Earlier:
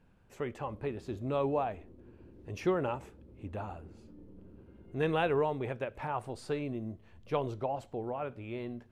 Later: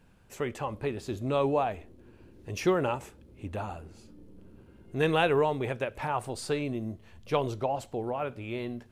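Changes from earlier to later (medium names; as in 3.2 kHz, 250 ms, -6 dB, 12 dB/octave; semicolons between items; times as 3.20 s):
speech +4.0 dB; master: add treble shelf 3.6 kHz +10.5 dB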